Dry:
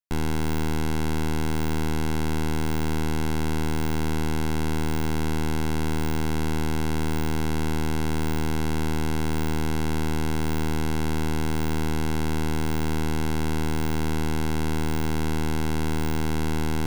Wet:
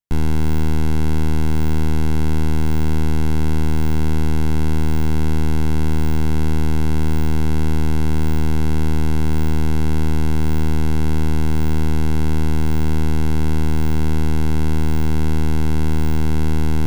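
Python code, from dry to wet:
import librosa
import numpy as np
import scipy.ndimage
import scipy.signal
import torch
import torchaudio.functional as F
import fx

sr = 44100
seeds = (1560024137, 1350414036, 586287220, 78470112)

y = fx.low_shelf(x, sr, hz=210.0, db=11.5)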